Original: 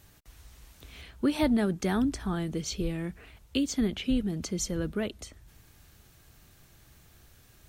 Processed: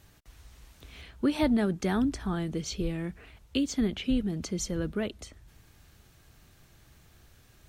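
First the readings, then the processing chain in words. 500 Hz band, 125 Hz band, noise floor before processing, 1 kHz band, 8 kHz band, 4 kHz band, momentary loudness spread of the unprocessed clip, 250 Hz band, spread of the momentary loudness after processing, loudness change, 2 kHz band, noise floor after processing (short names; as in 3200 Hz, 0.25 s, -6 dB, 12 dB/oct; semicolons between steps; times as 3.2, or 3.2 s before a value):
0.0 dB, 0.0 dB, -59 dBFS, 0.0 dB, -2.0 dB, -1.0 dB, 21 LU, 0.0 dB, 17 LU, 0.0 dB, -0.5 dB, -60 dBFS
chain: high shelf 8700 Hz -6.5 dB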